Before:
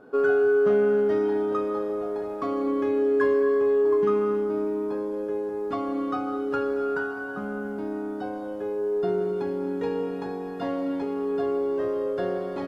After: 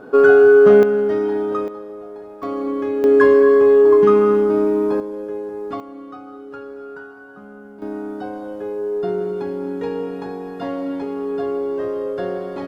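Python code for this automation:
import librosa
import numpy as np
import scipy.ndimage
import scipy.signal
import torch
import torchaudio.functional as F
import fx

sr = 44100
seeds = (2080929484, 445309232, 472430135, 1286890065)

y = fx.gain(x, sr, db=fx.steps((0.0, 11.0), (0.83, 4.0), (1.68, -5.0), (2.43, 2.5), (3.04, 10.0), (5.0, 1.5), (5.8, -8.0), (7.82, 3.0)))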